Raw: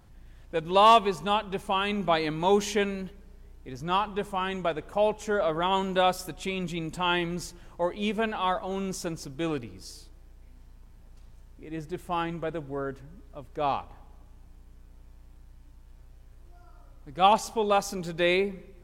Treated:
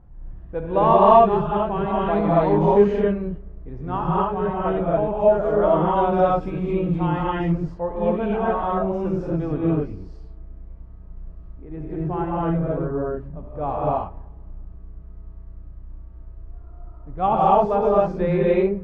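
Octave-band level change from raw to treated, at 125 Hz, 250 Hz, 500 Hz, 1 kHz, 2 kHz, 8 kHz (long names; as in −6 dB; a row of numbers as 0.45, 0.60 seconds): +12.5 dB, +9.5 dB, +9.0 dB, +5.5 dB, −3.5 dB, below −25 dB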